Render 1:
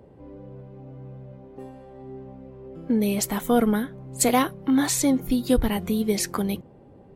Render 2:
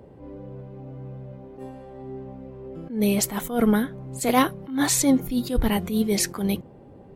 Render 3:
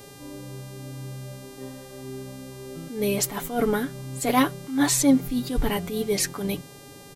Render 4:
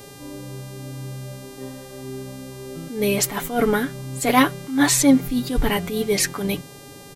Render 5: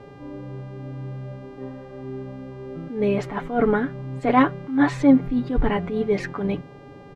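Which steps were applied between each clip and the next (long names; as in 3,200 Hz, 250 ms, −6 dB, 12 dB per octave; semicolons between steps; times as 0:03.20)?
level that may rise only so fast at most 130 dB per second; level +3 dB
comb filter 7 ms, depth 57%; hum with harmonics 400 Hz, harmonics 34, −47 dBFS −2 dB per octave; level −2 dB
dynamic equaliser 2,000 Hz, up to +4 dB, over −40 dBFS, Q 0.94; level +3.5 dB
low-pass filter 1,600 Hz 12 dB per octave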